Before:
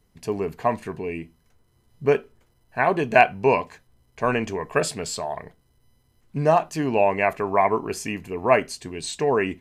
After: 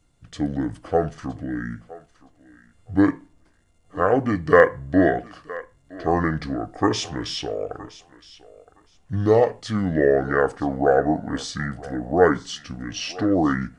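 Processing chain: wide varispeed 0.697×; thinning echo 0.966 s, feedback 17%, high-pass 440 Hz, level -17.5 dB; gain +1 dB

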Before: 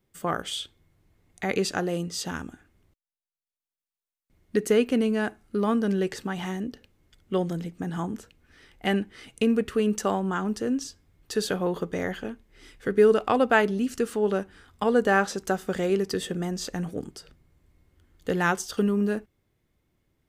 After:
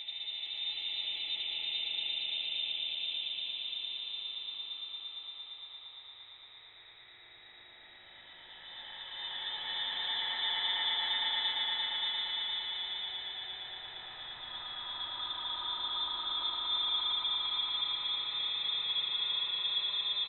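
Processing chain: compressor 2:1, threshold -35 dBFS, peak gain reduction 11.5 dB; Paulstretch 10×, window 0.50 s, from 7.85; on a send: echo 77 ms -3.5 dB; on the sum: inverted band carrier 3800 Hz; swelling echo 0.115 s, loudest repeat 5, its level -5 dB; gain -7.5 dB

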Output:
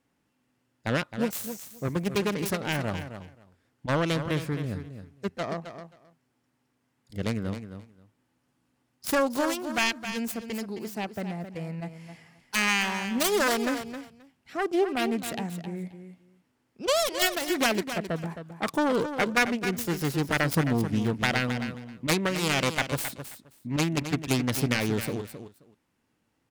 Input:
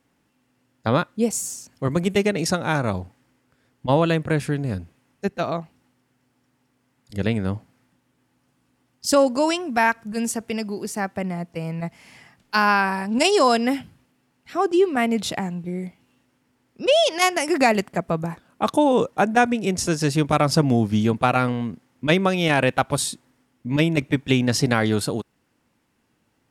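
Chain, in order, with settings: self-modulated delay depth 0.45 ms; on a send: feedback echo 0.265 s, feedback 16%, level -10 dB; on the sum: gain -6.5 dB

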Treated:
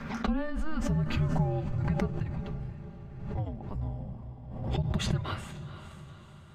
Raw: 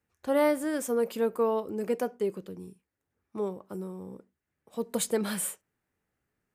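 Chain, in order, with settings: compressor, threshold -31 dBFS, peak gain reduction 11 dB; notch comb 200 Hz; frequency shift -310 Hz; air absorption 230 m; diffused feedback echo 0.485 s, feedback 54%, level -10.5 dB; on a send at -20 dB: reverb RT60 1.3 s, pre-delay 64 ms; on the sum: backwards sustainer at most 52 dB/s; gain +6 dB

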